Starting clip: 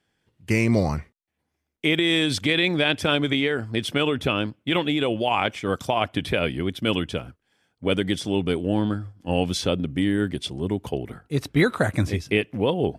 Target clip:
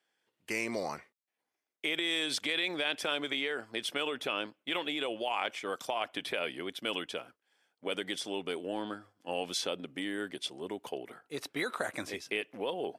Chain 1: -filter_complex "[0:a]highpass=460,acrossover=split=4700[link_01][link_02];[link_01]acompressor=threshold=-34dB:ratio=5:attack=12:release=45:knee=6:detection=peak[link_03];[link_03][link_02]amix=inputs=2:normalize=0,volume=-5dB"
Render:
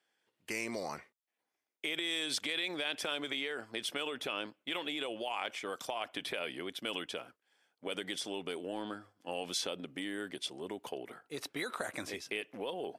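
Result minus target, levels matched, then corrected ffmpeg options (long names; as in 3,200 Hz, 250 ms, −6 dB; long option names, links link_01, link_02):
downward compressor: peak gain reduction +5 dB
-filter_complex "[0:a]highpass=460,acrossover=split=4700[link_01][link_02];[link_01]acompressor=threshold=-28dB:ratio=5:attack=12:release=45:knee=6:detection=peak[link_03];[link_03][link_02]amix=inputs=2:normalize=0,volume=-5dB"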